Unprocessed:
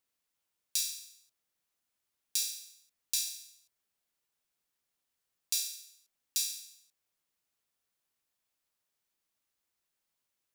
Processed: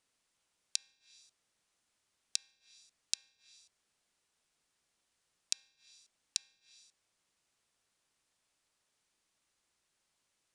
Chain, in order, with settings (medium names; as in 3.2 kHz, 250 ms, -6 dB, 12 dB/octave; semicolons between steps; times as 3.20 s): steep low-pass 10 kHz; low-pass that closes with the level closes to 590 Hz, closed at -35.5 dBFS; trim +6.5 dB